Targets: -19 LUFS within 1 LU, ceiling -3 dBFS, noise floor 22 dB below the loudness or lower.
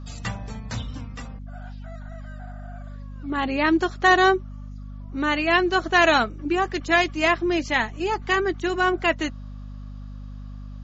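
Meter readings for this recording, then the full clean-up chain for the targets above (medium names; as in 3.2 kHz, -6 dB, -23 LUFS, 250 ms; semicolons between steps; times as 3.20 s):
hum 50 Hz; highest harmonic 250 Hz; hum level -34 dBFS; loudness -22.0 LUFS; peak level -4.0 dBFS; loudness target -19.0 LUFS
-> de-hum 50 Hz, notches 5; trim +3 dB; peak limiter -3 dBFS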